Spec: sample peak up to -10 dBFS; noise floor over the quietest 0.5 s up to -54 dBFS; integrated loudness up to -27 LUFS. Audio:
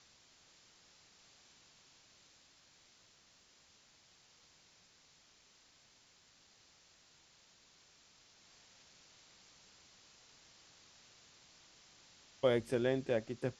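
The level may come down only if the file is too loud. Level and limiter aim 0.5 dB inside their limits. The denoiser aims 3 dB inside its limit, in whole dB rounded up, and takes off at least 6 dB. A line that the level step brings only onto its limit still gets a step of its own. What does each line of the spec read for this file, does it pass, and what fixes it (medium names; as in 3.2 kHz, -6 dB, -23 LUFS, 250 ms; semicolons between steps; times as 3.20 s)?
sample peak -18.0 dBFS: pass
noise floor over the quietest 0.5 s -67 dBFS: pass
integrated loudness -35.0 LUFS: pass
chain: none needed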